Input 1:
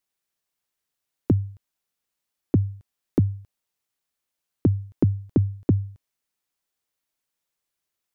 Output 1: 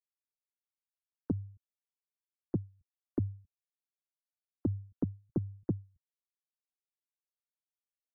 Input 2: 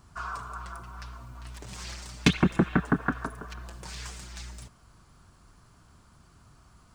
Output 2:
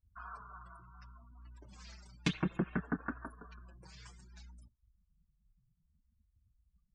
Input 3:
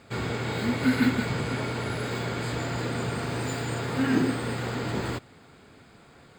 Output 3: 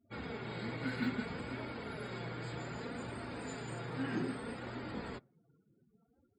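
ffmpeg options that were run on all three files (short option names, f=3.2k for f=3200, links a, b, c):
-af "flanger=delay=3:depth=3.5:regen=-30:speed=0.63:shape=triangular,afftdn=nr=35:nf=-48,volume=-8dB"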